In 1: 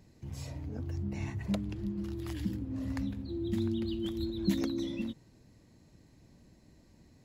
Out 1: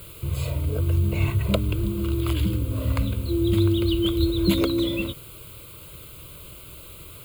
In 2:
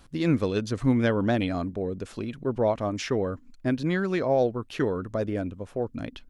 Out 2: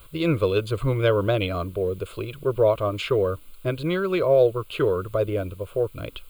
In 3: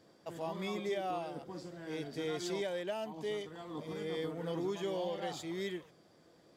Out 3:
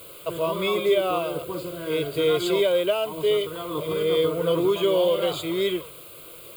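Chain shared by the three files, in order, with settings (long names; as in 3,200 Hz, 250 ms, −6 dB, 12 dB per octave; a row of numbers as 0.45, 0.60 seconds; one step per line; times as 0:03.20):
bit-depth reduction 10 bits, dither triangular
phaser with its sweep stopped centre 1,200 Hz, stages 8
loudness normalisation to −24 LKFS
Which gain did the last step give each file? +17.5, +7.0, +17.5 decibels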